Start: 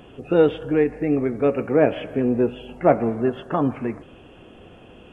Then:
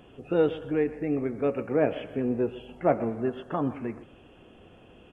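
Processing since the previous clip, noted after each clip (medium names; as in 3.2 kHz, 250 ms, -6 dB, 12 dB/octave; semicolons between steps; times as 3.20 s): delay 127 ms -16.5 dB; trim -7 dB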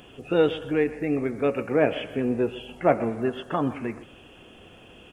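treble shelf 2.1 kHz +11.5 dB; trim +2 dB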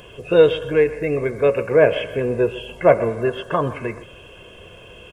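comb 1.9 ms, depth 67%; trim +5 dB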